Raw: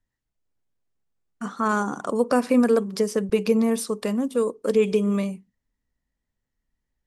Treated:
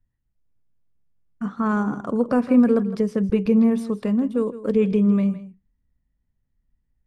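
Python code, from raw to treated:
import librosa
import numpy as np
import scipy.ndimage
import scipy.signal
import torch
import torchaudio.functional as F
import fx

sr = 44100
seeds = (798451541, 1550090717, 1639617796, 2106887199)

p1 = fx.bass_treble(x, sr, bass_db=13, treble_db=-14)
p2 = p1 + fx.echo_single(p1, sr, ms=161, db=-14.5, dry=0)
y = p2 * librosa.db_to_amplitude(-3.0)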